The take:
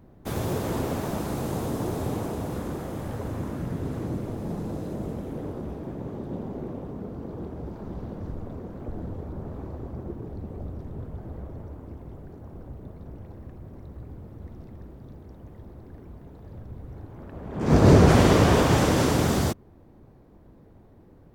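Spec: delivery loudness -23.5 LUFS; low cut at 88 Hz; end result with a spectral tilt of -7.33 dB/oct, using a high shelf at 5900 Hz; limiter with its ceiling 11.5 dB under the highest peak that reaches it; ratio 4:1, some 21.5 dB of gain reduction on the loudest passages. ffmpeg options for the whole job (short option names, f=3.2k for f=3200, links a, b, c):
-af "highpass=88,highshelf=f=5.9k:g=-8.5,acompressor=threshold=-39dB:ratio=4,volume=22.5dB,alimiter=limit=-14.5dB:level=0:latency=1"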